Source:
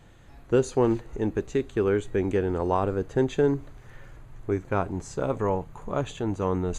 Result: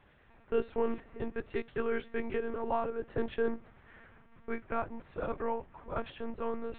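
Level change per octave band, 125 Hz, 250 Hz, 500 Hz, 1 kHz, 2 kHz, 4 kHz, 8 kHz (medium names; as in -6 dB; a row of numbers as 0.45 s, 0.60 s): -19.0 dB, -11.5 dB, -9.0 dB, -6.5 dB, -4.0 dB, -9.0 dB, no reading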